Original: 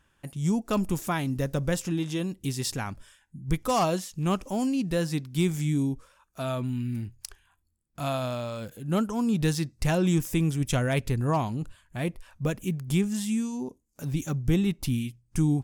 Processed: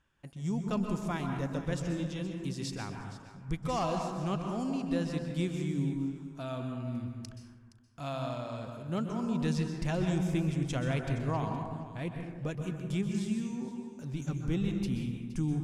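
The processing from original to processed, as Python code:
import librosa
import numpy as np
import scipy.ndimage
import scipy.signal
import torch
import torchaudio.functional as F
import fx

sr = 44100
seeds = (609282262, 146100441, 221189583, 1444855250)

y = scipy.signal.sosfilt(scipy.signal.butter(2, 6700.0, 'lowpass', fs=sr, output='sos'), x)
y = y + 10.0 ** (-15.5 / 20.0) * np.pad(y, (int(469 * sr / 1000.0), 0))[:len(y)]
y = fx.rev_plate(y, sr, seeds[0], rt60_s=1.3, hf_ratio=0.35, predelay_ms=115, drr_db=3.5)
y = y * 10.0 ** (-8.0 / 20.0)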